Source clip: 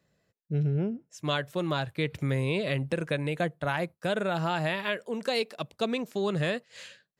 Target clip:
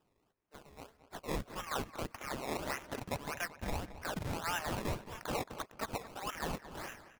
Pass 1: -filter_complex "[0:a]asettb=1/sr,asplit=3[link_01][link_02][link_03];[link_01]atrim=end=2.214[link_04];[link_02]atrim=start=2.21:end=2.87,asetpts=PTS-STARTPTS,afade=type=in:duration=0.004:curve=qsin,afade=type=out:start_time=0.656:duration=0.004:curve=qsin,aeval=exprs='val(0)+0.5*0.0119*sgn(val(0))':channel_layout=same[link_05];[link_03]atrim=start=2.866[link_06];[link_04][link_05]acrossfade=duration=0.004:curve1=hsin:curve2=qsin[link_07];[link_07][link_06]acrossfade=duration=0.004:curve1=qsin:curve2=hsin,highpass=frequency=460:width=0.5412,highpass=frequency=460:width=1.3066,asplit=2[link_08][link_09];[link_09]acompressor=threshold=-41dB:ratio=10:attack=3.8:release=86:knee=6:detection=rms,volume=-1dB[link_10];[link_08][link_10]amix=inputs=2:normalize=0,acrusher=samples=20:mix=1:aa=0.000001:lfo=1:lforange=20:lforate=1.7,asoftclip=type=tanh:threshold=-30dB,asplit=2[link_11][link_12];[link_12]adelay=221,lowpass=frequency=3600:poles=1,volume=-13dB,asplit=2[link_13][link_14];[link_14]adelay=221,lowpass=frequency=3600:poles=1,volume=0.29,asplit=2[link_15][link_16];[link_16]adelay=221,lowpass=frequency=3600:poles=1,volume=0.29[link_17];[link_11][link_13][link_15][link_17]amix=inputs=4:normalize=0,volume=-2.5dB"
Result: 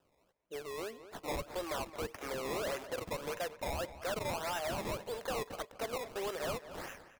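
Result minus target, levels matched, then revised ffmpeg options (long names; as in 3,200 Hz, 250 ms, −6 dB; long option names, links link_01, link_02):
soft clipping: distortion +7 dB; 500 Hz band +4.5 dB
-filter_complex "[0:a]asettb=1/sr,asplit=3[link_01][link_02][link_03];[link_01]atrim=end=2.214[link_04];[link_02]atrim=start=2.21:end=2.87,asetpts=PTS-STARTPTS,afade=type=in:duration=0.004:curve=qsin,afade=type=out:start_time=0.656:duration=0.004:curve=qsin,aeval=exprs='val(0)+0.5*0.0119*sgn(val(0))':channel_layout=same[link_05];[link_03]atrim=start=2.866[link_06];[link_04][link_05]acrossfade=duration=0.004:curve1=hsin:curve2=qsin[link_07];[link_07][link_06]acrossfade=duration=0.004:curve1=qsin:curve2=hsin,highpass=frequency=990:width=0.5412,highpass=frequency=990:width=1.3066,asplit=2[link_08][link_09];[link_09]acompressor=threshold=-41dB:ratio=10:attack=3.8:release=86:knee=6:detection=rms,volume=-1dB[link_10];[link_08][link_10]amix=inputs=2:normalize=0,acrusher=samples=20:mix=1:aa=0.000001:lfo=1:lforange=20:lforate=1.7,asoftclip=type=tanh:threshold=-23dB,asplit=2[link_11][link_12];[link_12]adelay=221,lowpass=frequency=3600:poles=1,volume=-13dB,asplit=2[link_13][link_14];[link_14]adelay=221,lowpass=frequency=3600:poles=1,volume=0.29,asplit=2[link_15][link_16];[link_16]adelay=221,lowpass=frequency=3600:poles=1,volume=0.29[link_17];[link_11][link_13][link_15][link_17]amix=inputs=4:normalize=0,volume=-2.5dB"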